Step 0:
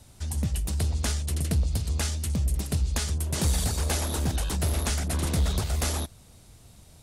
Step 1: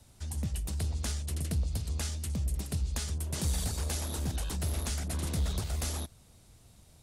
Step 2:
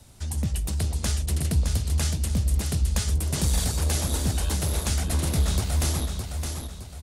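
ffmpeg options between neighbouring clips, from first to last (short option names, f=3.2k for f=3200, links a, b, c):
-filter_complex "[0:a]acrossover=split=270|3000[a][b][c];[b]acompressor=threshold=-35dB:ratio=6[d];[a][d][c]amix=inputs=3:normalize=0,volume=-6dB"
-af "aecho=1:1:614|1228|1842|2456|3070:0.501|0.195|0.0762|0.0297|0.0116,volume=7dB"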